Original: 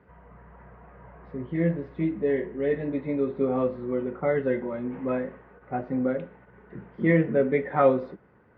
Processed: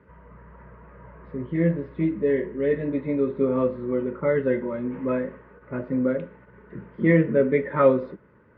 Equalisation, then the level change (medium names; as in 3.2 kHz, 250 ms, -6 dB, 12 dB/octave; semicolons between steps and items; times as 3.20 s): Butterworth band-stop 750 Hz, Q 4; distance through air 120 m; +3.0 dB